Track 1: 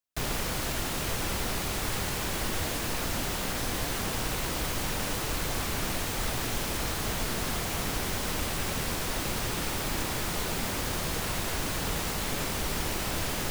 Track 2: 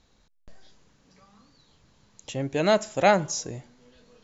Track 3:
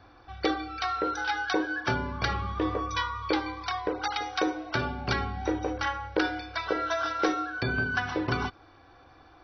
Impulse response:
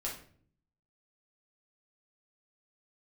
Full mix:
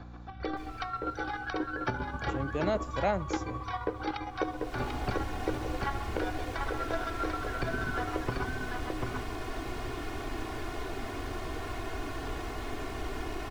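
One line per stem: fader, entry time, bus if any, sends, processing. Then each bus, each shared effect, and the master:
-8.0 dB, 0.40 s, no send, no echo send, treble shelf 8.7 kHz -9 dB; comb 2.8 ms, depth 89%; auto duck -19 dB, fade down 1.00 s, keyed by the second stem
-6.5 dB, 0.00 s, no send, no echo send, none
-1.0 dB, 0.00 s, no send, echo send -4 dB, square tremolo 7.5 Hz, depth 60%, duty 25%; hum 60 Hz, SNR 17 dB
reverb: none
echo: delay 741 ms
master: treble shelf 2.8 kHz -11.5 dB; three bands compressed up and down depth 40%

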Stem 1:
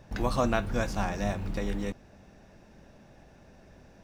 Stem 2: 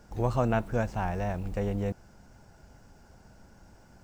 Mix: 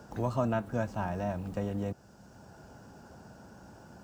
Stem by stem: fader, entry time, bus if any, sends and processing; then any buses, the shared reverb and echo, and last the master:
-9.0 dB, 0.00 s, no send, low-pass 1.6 kHz 12 dB/octave
-3.0 dB, 0.00 s, no send, peaking EQ 2.1 kHz -12 dB 0.28 oct; three bands compressed up and down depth 40%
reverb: none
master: high-pass 89 Hz 12 dB/octave

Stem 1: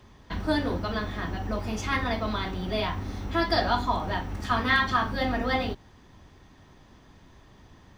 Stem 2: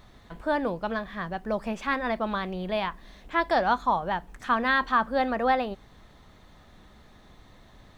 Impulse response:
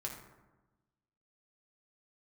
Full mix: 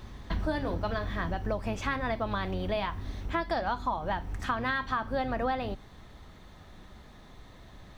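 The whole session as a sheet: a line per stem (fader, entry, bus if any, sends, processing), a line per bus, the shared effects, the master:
+2.5 dB, 0.00 s, no send, bass shelf 75 Hz +11.5 dB; auto duck -12 dB, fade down 1.70 s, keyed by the second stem
+1.0 dB, 0.00 s, polarity flipped, no send, octave divider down 1 oct, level -5 dB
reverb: none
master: compression 6:1, threshold -27 dBFS, peak gain reduction 10.5 dB

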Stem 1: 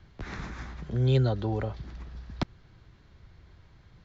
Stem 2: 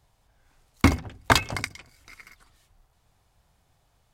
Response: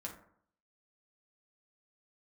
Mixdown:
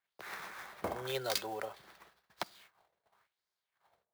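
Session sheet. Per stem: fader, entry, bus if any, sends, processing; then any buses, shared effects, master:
-2.0 dB, 0.00 s, send -20 dB, high-pass 560 Hz 12 dB/octave
-10.5 dB, 0.00 s, muted 1.42–2.37 s, send -4 dB, spectral levelling over time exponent 0.6; treble shelf 7.8 kHz +6 dB; LFO band-pass sine 0.93 Hz 520–5400 Hz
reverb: on, RT60 0.65 s, pre-delay 5 ms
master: gate -59 dBFS, range -27 dB; peaking EQ 270 Hz -13.5 dB 0.31 oct; sampling jitter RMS 0.022 ms

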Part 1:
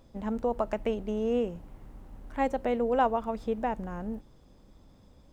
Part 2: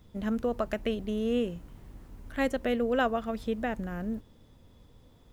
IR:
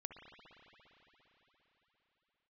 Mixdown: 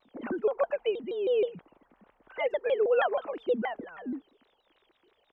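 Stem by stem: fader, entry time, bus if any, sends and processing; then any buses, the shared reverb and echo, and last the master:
-8.0 dB, 0.00 s, no send, three-band isolator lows -24 dB, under 530 Hz, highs -17 dB, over 2.1 kHz; hum notches 50/100/150/200/250/300/350/400/450 Hz
+0.5 dB, 0.7 ms, no send, formants replaced by sine waves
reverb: none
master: vibrato with a chosen wave saw down 6.3 Hz, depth 250 cents

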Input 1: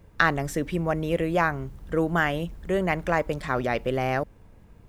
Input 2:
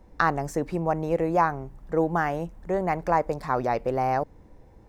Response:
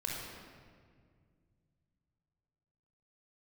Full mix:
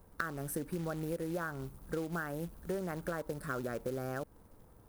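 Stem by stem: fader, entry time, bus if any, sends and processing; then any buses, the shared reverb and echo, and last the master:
-3.5 dB, 0.00 s, no send, elliptic band-stop 1.4–9.3 kHz, stop band 40 dB; tilt EQ +2.5 dB/octave
-10.5 dB, 0.00 s, no send, none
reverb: none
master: short-mantissa float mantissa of 2-bit; compression 10:1, threshold -33 dBFS, peak gain reduction 13 dB

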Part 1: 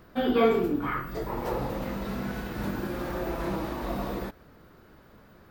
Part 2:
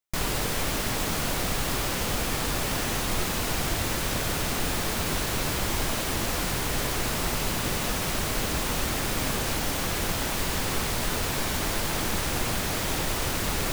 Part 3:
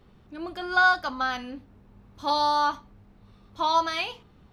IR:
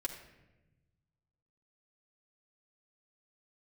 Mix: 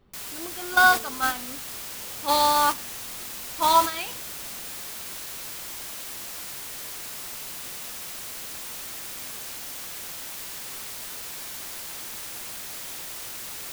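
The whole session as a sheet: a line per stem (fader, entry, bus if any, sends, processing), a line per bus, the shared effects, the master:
-16.5 dB, 0.55 s, no send, none
-6.0 dB, 0.00 s, no send, tilt EQ +3 dB/octave
+2.0 dB, 0.00 s, send -13 dB, none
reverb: on, RT60 1.0 s, pre-delay 3 ms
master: gate -21 dBFS, range -8 dB

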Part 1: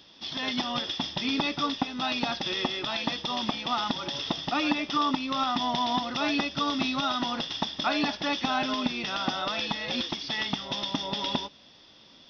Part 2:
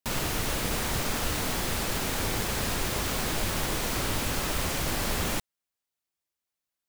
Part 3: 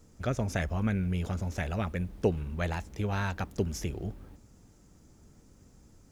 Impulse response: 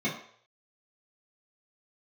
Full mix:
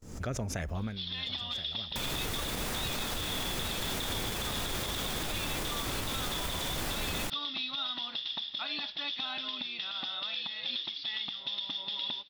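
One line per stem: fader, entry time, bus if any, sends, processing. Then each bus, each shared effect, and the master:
-19.5 dB, 0.75 s, no send, resonant low-pass 3.9 kHz, resonance Q 4.6; peaking EQ 2.6 kHz +8.5 dB 2.9 oct
-2.5 dB, 1.90 s, no send, none
0.79 s -4 dB -> 1.03 s -16.5 dB, 0.00 s, no send, swell ahead of each attack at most 78 dB/s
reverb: none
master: gate with hold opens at -45 dBFS; peak limiter -24.5 dBFS, peak gain reduction 8 dB

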